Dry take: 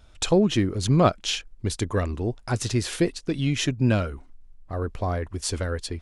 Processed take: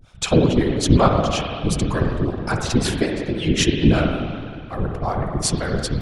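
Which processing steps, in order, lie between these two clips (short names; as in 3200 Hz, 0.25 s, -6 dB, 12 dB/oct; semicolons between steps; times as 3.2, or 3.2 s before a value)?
harmonic tremolo 5.4 Hz, depth 100%, crossover 420 Hz; spring tank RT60 2.2 s, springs 47/57 ms, chirp 60 ms, DRR 2 dB; whisperiser; gain +7.5 dB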